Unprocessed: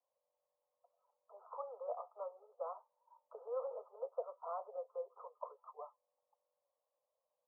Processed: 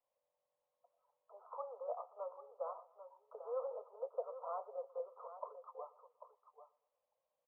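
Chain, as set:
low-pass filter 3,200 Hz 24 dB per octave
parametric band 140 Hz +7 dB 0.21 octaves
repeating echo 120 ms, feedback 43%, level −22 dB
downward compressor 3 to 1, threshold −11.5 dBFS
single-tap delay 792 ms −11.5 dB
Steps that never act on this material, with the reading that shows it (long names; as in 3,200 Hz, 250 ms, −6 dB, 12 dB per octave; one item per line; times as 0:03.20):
low-pass filter 3,200 Hz: nothing at its input above 1,400 Hz
parametric band 140 Hz: nothing at its input below 380 Hz
downward compressor, threshold −11.5 dBFS: peak of its input −27.5 dBFS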